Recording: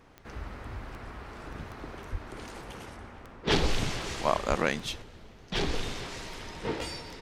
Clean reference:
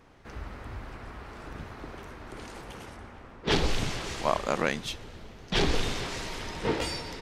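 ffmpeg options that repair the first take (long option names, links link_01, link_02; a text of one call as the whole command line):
ffmpeg -i in.wav -filter_complex "[0:a]adeclick=threshold=4,asplit=3[link_01][link_02][link_03];[link_01]afade=type=out:start_time=2.11:duration=0.02[link_04];[link_02]highpass=frequency=140:width=0.5412,highpass=frequency=140:width=1.3066,afade=type=in:start_time=2.11:duration=0.02,afade=type=out:start_time=2.23:duration=0.02[link_05];[link_03]afade=type=in:start_time=2.23:duration=0.02[link_06];[link_04][link_05][link_06]amix=inputs=3:normalize=0,asplit=3[link_07][link_08][link_09];[link_07]afade=type=out:start_time=4.48:duration=0.02[link_10];[link_08]highpass=frequency=140:width=0.5412,highpass=frequency=140:width=1.3066,afade=type=in:start_time=4.48:duration=0.02,afade=type=out:start_time=4.6:duration=0.02[link_11];[link_09]afade=type=in:start_time=4.6:duration=0.02[link_12];[link_10][link_11][link_12]amix=inputs=3:normalize=0,asetnsamples=nb_out_samples=441:pad=0,asendcmd='5.02 volume volume 4.5dB',volume=0dB" out.wav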